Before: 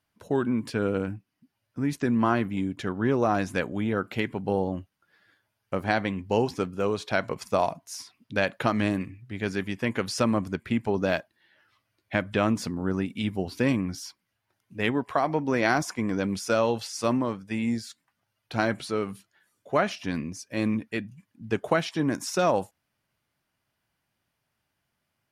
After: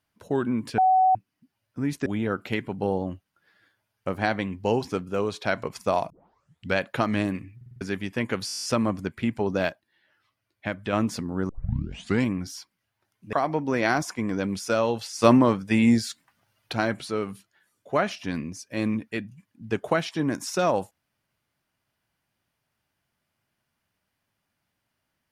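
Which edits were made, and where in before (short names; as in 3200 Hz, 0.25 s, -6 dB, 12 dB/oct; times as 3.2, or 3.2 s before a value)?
0.78–1.15 bleep 751 Hz -15.5 dBFS
2.06–3.72 cut
7.76 tape start 0.66 s
9.22 stutter in place 0.05 s, 5 plays
10.12 stutter 0.02 s, 10 plays
11.17–12.41 gain -4 dB
12.97 tape start 0.78 s
14.81–15.13 cut
17.02–18.53 gain +8.5 dB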